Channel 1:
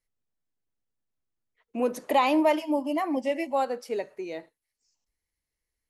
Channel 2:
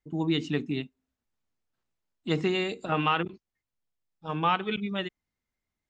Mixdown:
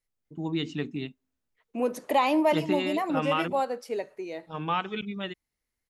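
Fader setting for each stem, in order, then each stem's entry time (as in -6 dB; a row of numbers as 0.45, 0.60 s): -1.0, -3.0 dB; 0.00, 0.25 s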